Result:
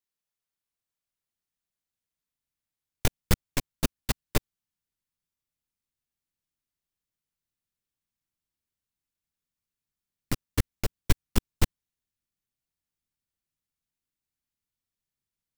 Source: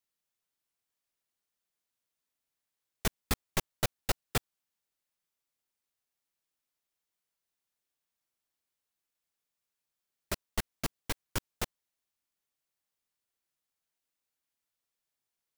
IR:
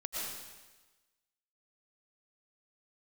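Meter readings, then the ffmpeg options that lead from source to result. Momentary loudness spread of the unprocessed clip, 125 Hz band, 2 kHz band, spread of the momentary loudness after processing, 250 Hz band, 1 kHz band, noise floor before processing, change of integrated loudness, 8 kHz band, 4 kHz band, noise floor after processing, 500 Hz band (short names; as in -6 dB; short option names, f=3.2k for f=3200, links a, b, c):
7 LU, +9.0 dB, +2.0 dB, 6 LU, +8.0 dB, +0.5 dB, under -85 dBFS, +4.5 dB, +2.5 dB, +2.5 dB, under -85 dBFS, +3.5 dB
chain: -af "asubboost=boost=4.5:cutoff=250,aeval=exprs='0.473*(cos(1*acos(clip(val(0)/0.473,-1,1)))-cos(1*PI/2))+0.0299*(cos(5*acos(clip(val(0)/0.473,-1,1)))-cos(5*PI/2))+0.237*(cos(8*acos(clip(val(0)/0.473,-1,1)))-cos(8*PI/2))':c=same,volume=-6.5dB"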